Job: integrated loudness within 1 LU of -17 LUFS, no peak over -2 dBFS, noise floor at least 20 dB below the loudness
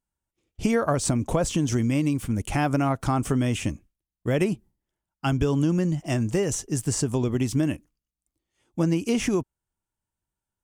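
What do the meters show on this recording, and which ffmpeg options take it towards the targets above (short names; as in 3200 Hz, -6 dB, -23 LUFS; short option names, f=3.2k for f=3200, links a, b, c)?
loudness -25.5 LUFS; peak -9.5 dBFS; loudness target -17.0 LUFS
-> -af "volume=8.5dB,alimiter=limit=-2dB:level=0:latency=1"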